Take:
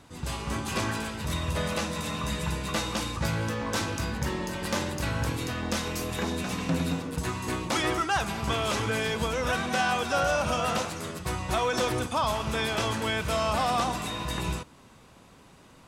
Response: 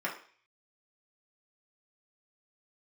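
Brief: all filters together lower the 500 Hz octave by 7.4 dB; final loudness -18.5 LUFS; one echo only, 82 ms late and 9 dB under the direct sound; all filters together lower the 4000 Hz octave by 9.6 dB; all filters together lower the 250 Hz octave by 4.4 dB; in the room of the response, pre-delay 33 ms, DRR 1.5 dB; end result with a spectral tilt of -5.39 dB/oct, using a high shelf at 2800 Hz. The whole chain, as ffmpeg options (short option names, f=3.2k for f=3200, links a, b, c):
-filter_complex "[0:a]equalizer=f=250:t=o:g=-4,equalizer=f=500:t=o:g=-8,highshelf=f=2.8k:g=-8.5,equalizer=f=4k:t=o:g=-5.5,aecho=1:1:82:0.355,asplit=2[a][b];[1:a]atrim=start_sample=2205,adelay=33[c];[b][c]afir=irnorm=-1:irlink=0,volume=-8dB[d];[a][d]amix=inputs=2:normalize=0,volume=12.5dB"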